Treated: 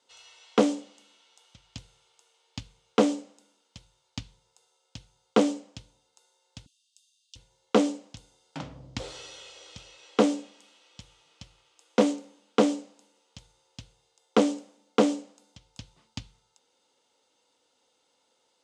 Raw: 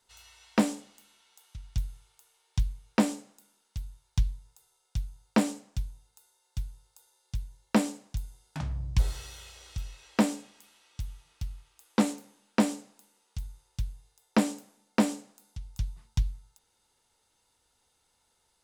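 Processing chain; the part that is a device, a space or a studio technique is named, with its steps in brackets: 6.66–7.36 s: steep high-pass 2.6 kHz 96 dB/octave; full-range speaker at full volume (loudspeaker Doppler distortion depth 0.72 ms; cabinet simulation 220–7700 Hz, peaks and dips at 280 Hz +7 dB, 520 Hz +9 dB, 1.7 kHz -4 dB, 3.1 kHz +4 dB); trim +1.5 dB

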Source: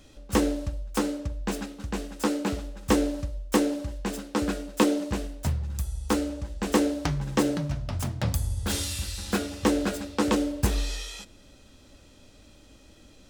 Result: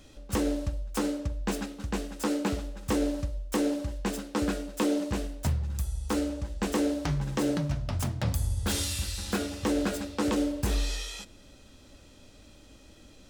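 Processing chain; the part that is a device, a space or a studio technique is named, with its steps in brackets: clipper into limiter (hard clipper -11 dBFS, distortion -31 dB; peak limiter -18 dBFS, peak gain reduction 7 dB)

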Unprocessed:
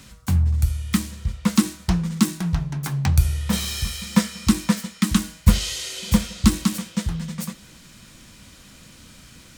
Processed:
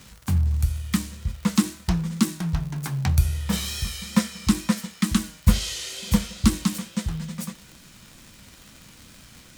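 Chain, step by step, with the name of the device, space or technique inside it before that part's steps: vinyl LP (wow and flutter; crackle 120 per s -32 dBFS; white noise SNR 37 dB); trim -2.5 dB

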